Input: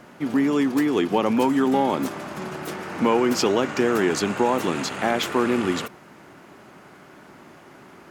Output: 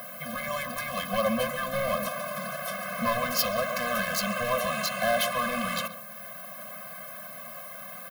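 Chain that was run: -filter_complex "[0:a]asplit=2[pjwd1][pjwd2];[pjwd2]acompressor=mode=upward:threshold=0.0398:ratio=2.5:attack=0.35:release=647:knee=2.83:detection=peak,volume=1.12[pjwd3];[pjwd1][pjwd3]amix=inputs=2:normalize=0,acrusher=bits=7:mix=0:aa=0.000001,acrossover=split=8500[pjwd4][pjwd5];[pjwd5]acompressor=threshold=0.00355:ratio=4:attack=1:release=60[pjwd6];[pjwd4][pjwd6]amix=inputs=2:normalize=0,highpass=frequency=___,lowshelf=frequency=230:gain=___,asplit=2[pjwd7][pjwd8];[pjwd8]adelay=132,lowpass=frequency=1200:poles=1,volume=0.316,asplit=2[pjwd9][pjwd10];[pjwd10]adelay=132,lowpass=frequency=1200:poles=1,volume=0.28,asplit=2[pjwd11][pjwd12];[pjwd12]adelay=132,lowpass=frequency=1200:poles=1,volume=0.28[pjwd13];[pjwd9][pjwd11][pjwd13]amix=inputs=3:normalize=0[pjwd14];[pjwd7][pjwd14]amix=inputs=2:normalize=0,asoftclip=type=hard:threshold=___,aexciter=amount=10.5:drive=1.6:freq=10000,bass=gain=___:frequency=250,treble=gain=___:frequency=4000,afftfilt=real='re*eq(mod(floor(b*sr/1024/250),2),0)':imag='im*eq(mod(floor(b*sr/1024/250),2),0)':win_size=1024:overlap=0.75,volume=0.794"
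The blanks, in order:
110, -11.5, 0.168, -3, -2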